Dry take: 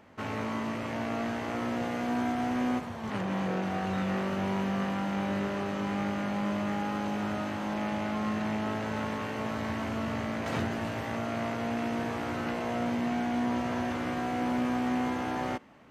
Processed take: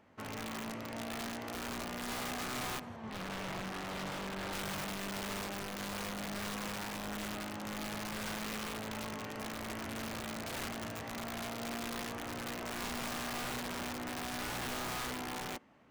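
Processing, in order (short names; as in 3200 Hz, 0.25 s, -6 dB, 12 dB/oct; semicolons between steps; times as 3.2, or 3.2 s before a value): wrapped overs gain 26 dB; 2.96–4.53 high shelf 6300 Hz -11 dB; gain -8 dB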